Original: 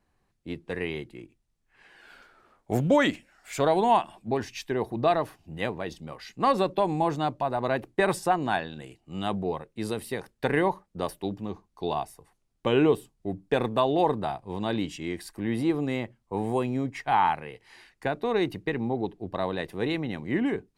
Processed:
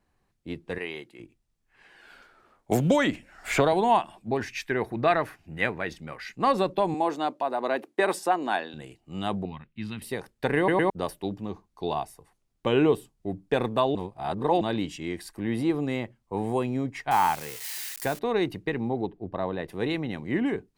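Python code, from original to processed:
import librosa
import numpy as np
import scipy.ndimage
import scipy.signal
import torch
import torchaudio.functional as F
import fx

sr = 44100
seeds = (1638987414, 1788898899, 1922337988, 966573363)

y = fx.highpass(x, sr, hz=530.0, slope=6, at=(0.78, 1.2))
y = fx.band_squash(y, sr, depth_pct=100, at=(2.71, 3.73))
y = fx.band_shelf(y, sr, hz=1800.0, db=8.5, octaves=1.1, at=(4.41, 6.35))
y = fx.highpass(y, sr, hz=240.0, slope=24, at=(6.94, 8.74))
y = fx.curve_eq(y, sr, hz=(230.0, 480.0, 920.0, 2800.0, 8900.0), db=(0, -23, -9, 3, -23), at=(9.45, 10.02))
y = fx.crossing_spikes(y, sr, level_db=-26.5, at=(17.11, 18.19))
y = fx.lowpass(y, sr, hz=1600.0, slope=6, at=(19.06, 19.68))
y = fx.edit(y, sr, fx.stutter_over(start_s=10.57, slice_s=0.11, count=3),
    fx.reverse_span(start_s=13.95, length_s=0.66), tone=tone)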